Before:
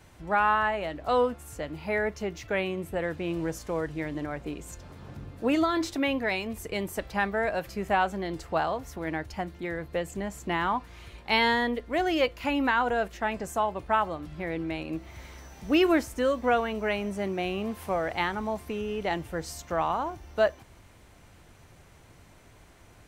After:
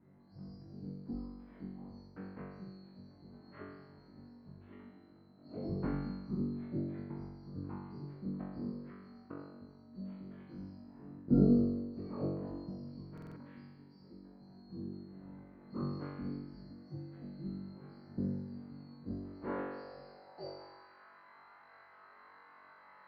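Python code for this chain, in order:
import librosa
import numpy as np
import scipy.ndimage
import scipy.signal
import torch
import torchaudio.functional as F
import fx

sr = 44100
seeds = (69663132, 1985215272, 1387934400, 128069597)

y = fx.band_swap(x, sr, width_hz=4000)
y = scipy.signal.sosfilt(scipy.signal.butter(4, 1800.0, 'lowpass', fs=sr, output='sos'), y)
y = fx.low_shelf(y, sr, hz=180.0, db=3.5)
y = fx.room_flutter(y, sr, wall_m=3.6, rt60_s=1.1)
y = fx.filter_sweep_bandpass(y, sr, from_hz=210.0, to_hz=1200.0, start_s=19.01, end_s=21.01, q=1.8)
y = fx.buffer_glitch(y, sr, at_s=(13.13,), block=2048, repeats=4)
y = y * librosa.db_to_amplitude(12.5)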